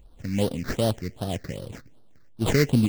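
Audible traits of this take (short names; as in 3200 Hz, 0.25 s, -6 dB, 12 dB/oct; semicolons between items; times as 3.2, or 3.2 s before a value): aliases and images of a low sample rate 2500 Hz, jitter 20%; phasing stages 6, 2.6 Hz, lowest notch 800–2100 Hz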